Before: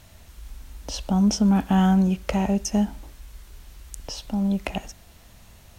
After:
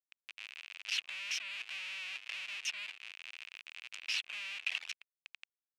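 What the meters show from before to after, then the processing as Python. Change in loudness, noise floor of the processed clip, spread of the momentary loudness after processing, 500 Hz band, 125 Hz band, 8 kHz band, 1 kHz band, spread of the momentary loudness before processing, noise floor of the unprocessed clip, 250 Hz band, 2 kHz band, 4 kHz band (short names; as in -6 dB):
-16.5 dB, under -85 dBFS, 13 LU, -35.5 dB, under -40 dB, -11.5 dB, -27.0 dB, 17 LU, -51 dBFS, under -40 dB, +1.0 dB, -1.5 dB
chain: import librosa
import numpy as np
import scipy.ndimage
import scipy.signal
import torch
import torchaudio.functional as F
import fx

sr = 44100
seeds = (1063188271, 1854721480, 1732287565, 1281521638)

p1 = fx.vibrato(x, sr, rate_hz=5.3, depth_cents=34.0)
p2 = fx.over_compress(p1, sr, threshold_db=-29.0, ratio=-1.0)
p3 = p1 + (p2 * librosa.db_to_amplitude(-0.5))
p4 = fx.schmitt(p3, sr, flips_db=-29.5)
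p5 = fx.dereverb_blind(p4, sr, rt60_s=0.5)
p6 = fx.ladder_bandpass(p5, sr, hz=2800.0, resonance_pct=70)
y = p6 * librosa.db_to_amplitude(1.5)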